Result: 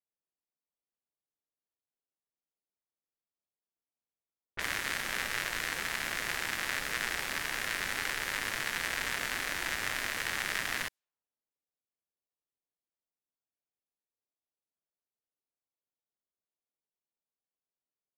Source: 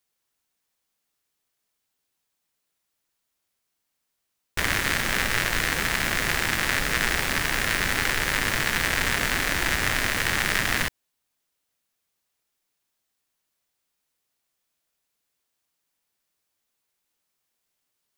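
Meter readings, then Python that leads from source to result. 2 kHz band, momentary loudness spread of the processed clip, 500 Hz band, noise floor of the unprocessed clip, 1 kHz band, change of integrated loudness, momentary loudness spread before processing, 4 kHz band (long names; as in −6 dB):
−9.0 dB, 1 LU, −11.5 dB, −79 dBFS, −9.5 dB, −9.5 dB, 1 LU, −9.0 dB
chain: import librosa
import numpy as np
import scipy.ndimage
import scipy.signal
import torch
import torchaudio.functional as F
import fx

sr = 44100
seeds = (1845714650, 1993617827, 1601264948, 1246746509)

y = fx.low_shelf(x, sr, hz=270.0, db=-10.5)
y = fx.env_lowpass(y, sr, base_hz=600.0, full_db=-25.0)
y = y * 10.0 ** (-9.0 / 20.0)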